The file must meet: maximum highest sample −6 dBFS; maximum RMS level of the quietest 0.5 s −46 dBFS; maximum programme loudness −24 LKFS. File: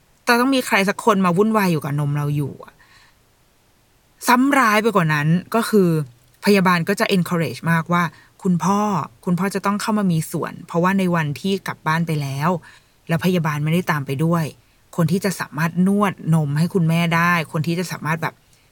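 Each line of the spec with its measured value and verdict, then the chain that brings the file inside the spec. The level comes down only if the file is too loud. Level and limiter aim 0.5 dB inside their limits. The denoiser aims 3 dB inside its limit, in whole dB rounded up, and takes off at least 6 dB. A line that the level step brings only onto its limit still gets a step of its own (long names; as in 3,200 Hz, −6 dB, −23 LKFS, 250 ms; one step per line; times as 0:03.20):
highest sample −2.0 dBFS: out of spec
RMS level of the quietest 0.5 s −57 dBFS: in spec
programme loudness −19.5 LKFS: out of spec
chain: level −5 dB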